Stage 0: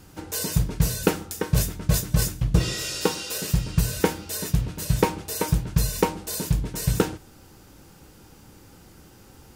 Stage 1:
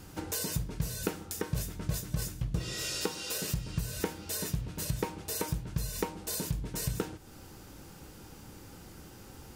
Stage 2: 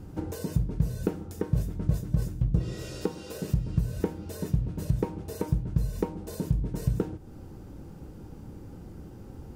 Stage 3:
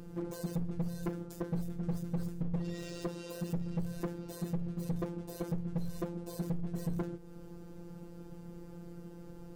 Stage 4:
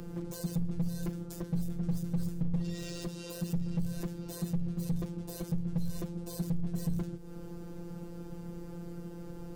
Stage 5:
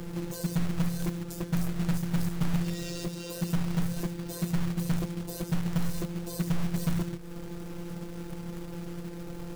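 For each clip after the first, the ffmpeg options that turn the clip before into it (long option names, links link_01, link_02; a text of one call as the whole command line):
ffmpeg -i in.wav -af "acompressor=threshold=-33dB:ratio=3" out.wav
ffmpeg -i in.wav -af "tiltshelf=frequency=970:gain=10,volume=-2dB" out.wav
ffmpeg -i in.wav -af "afftfilt=real='hypot(re,im)*cos(PI*b)':imag='0':win_size=1024:overlap=0.75,asoftclip=type=hard:threshold=-29dB,aeval=exprs='val(0)+0.000631*sin(2*PI*480*n/s)':channel_layout=same" out.wav
ffmpeg -i in.wav -filter_complex "[0:a]acrossover=split=190|3000[link_01][link_02][link_03];[link_02]acompressor=threshold=-48dB:ratio=6[link_04];[link_01][link_04][link_03]amix=inputs=3:normalize=0,volume=5.5dB" out.wav
ffmpeg -i in.wav -af "acrusher=bits=3:mode=log:mix=0:aa=0.000001,volume=4dB" out.wav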